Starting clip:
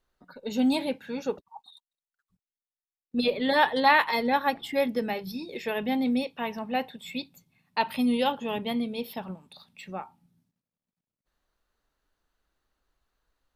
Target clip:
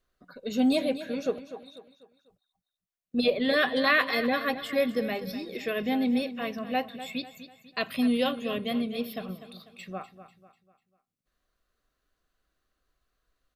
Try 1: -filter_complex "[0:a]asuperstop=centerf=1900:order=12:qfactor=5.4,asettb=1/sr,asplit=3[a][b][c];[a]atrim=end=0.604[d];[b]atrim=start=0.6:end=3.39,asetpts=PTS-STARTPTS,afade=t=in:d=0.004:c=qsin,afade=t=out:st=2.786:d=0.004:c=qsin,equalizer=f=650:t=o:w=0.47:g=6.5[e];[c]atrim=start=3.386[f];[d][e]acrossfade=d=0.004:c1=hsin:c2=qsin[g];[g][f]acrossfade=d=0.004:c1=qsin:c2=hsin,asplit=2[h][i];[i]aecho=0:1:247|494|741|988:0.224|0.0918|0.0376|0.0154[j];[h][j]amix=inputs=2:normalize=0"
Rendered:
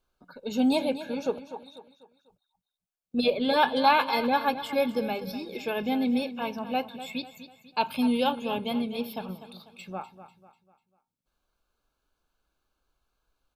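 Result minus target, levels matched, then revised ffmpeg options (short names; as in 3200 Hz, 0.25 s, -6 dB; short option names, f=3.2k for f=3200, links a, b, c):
1000 Hz band +6.5 dB
-filter_complex "[0:a]asuperstop=centerf=880:order=12:qfactor=5.4,asettb=1/sr,asplit=3[a][b][c];[a]atrim=end=0.604[d];[b]atrim=start=0.6:end=3.39,asetpts=PTS-STARTPTS,afade=t=in:d=0.004:c=qsin,afade=t=out:st=2.786:d=0.004:c=qsin,equalizer=f=650:t=o:w=0.47:g=6.5[e];[c]atrim=start=3.386[f];[d][e]acrossfade=d=0.004:c1=hsin:c2=qsin[g];[g][f]acrossfade=d=0.004:c1=qsin:c2=hsin,asplit=2[h][i];[i]aecho=0:1:247|494|741|988:0.224|0.0918|0.0376|0.0154[j];[h][j]amix=inputs=2:normalize=0"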